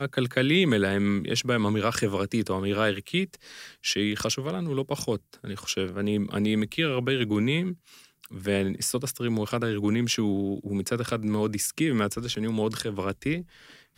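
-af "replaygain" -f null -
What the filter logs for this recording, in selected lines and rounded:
track_gain = +7.5 dB
track_peak = 0.211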